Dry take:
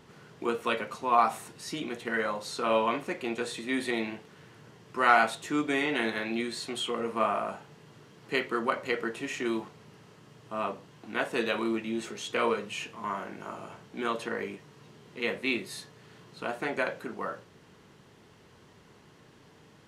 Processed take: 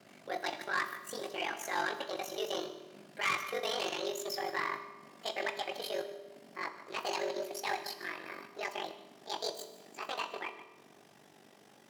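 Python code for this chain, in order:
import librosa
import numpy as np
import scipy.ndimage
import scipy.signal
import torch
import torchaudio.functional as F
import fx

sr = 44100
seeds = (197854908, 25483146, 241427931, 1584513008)

p1 = fx.speed_glide(x, sr, from_pct=152, to_pct=182)
p2 = p1 + fx.echo_single(p1, sr, ms=152, db=-14.5, dry=0)
p3 = p2 * np.sin(2.0 * np.pi * 24.0 * np.arange(len(p2)) / sr)
p4 = fx.transient(p3, sr, attack_db=-5, sustain_db=-9)
p5 = 10.0 ** (-26.5 / 20.0) * np.tanh(p4 / 10.0 ** (-26.5 / 20.0))
p6 = scipy.signal.sosfilt(scipy.signal.butter(4, 92.0, 'highpass', fs=sr, output='sos'), p5)
y = fx.rev_fdn(p6, sr, rt60_s=1.3, lf_ratio=1.25, hf_ratio=0.8, size_ms=15.0, drr_db=8.0)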